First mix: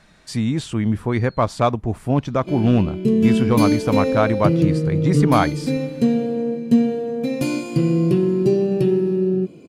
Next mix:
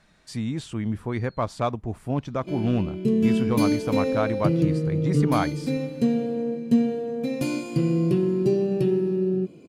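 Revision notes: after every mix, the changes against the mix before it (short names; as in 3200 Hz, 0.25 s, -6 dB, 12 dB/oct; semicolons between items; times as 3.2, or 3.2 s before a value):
speech -7.5 dB; background -4.5 dB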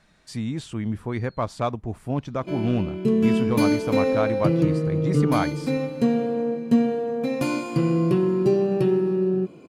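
background: add bell 1100 Hz +10.5 dB 1.6 oct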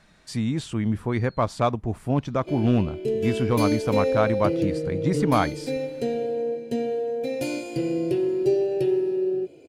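speech +3.0 dB; background: add fixed phaser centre 470 Hz, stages 4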